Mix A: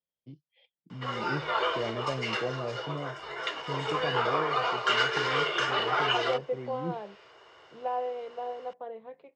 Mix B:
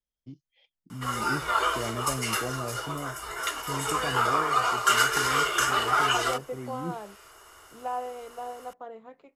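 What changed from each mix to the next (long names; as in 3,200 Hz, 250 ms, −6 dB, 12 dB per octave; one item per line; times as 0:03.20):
master: remove loudspeaker in its box 140–4,300 Hz, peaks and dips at 150 Hz +4 dB, 260 Hz −5 dB, 510 Hz +5 dB, 1,300 Hz −8 dB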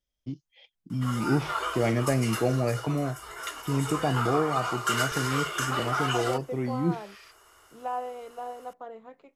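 first voice +9.0 dB
background −5.5 dB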